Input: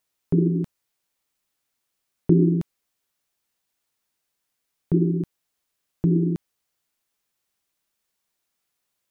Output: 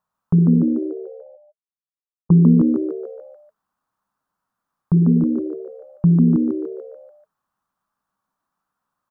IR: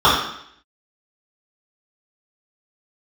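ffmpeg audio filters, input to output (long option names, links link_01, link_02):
-filter_complex "[0:a]asplit=3[link_01][link_02][link_03];[link_01]afade=type=out:start_time=0.62:duration=0.02[link_04];[link_02]agate=range=-31dB:threshold=-18dB:ratio=16:detection=peak,afade=type=in:start_time=0.62:duration=0.02,afade=type=out:start_time=2.39:duration=0.02[link_05];[link_03]afade=type=in:start_time=2.39:duration=0.02[link_06];[link_04][link_05][link_06]amix=inputs=3:normalize=0,firequalizer=gain_entry='entry(110,0);entry(200,8);entry(290,-13);entry(490,-2);entry(1100,11);entry(2100,-14)':delay=0.05:min_phase=1,asplit=7[link_07][link_08][link_09][link_10][link_11][link_12][link_13];[link_08]adelay=146,afreqshift=71,volume=-3.5dB[link_14];[link_09]adelay=292,afreqshift=142,volume=-9.7dB[link_15];[link_10]adelay=438,afreqshift=213,volume=-15.9dB[link_16];[link_11]adelay=584,afreqshift=284,volume=-22.1dB[link_17];[link_12]adelay=730,afreqshift=355,volume=-28.3dB[link_18];[link_13]adelay=876,afreqshift=426,volume=-34.5dB[link_19];[link_07][link_14][link_15][link_16][link_17][link_18][link_19]amix=inputs=7:normalize=0,volume=1.5dB"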